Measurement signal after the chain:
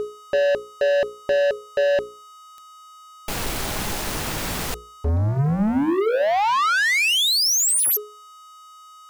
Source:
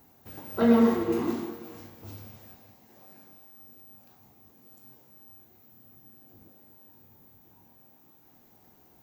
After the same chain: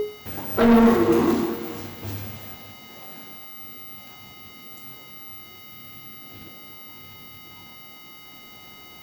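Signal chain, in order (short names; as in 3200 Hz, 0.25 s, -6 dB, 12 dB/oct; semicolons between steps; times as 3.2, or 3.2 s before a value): whine 420 Hz -30 dBFS; sample leveller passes 3; notches 60/120/180/240/300/360/420/480/540 Hz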